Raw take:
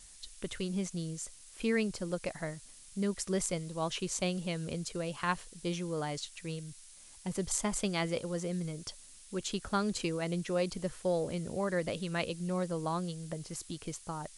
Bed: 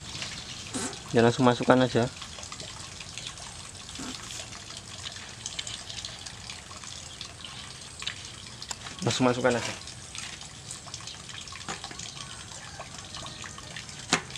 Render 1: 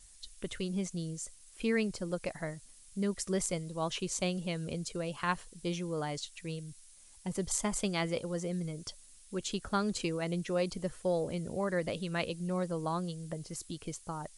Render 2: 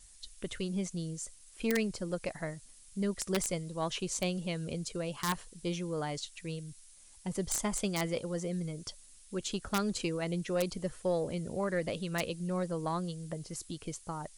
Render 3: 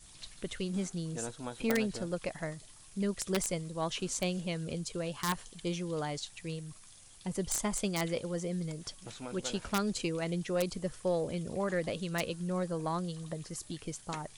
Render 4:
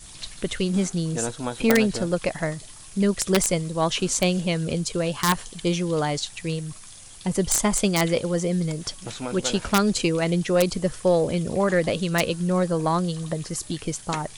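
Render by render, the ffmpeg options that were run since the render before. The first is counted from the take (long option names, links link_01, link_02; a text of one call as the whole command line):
ffmpeg -i in.wav -af "afftdn=noise_reduction=6:noise_floor=-55" out.wav
ffmpeg -i in.wav -af "aeval=exprs='0.178*(cos(1*acos(clip(val(0)/0.178,-1,1)))-cos(1*PI/2))+0.0355*(cos(2*acos(clip(val(0)/0.178,-1,1)))-cos(2*PI/2))+0.00708*(cos(3*acos(clip(val(0)/0.178,-1,1)))-cos(3*PI/2))+0.00562*(cos(5*acos(clip(val(0)/0.178,-1,1)))-cos(5*PI/2))+0.00112*(cos(8*acos(clip(val(0)/0.178,-1,1)))-cos(8*PI/2))':channel_layout=same,aeval=exprs='(mod(11.9*val(0)+1,2)-1)/11.9':channel_layout=same" out.wav
ffmpeg -i in.wav -i bed.wav -filter_complex "[1:a]volume=-20dB[link_01];[0:a][link_01]amix=inputs=2:normalize=0" out.wav
ffmpeg -i in.wav -af "volume=11.5dB" out.wav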